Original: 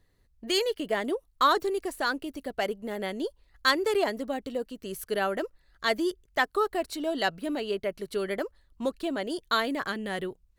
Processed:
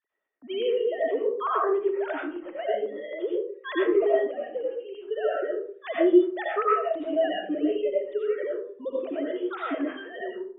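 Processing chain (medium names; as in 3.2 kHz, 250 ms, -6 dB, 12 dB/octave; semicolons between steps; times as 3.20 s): formants replaced by sine waves; bass shelf 350 Hz +8.5 dB; reverberation RT60 0.50 s, pre-delay 50 ms, DRR -5 dB; trim -6 dB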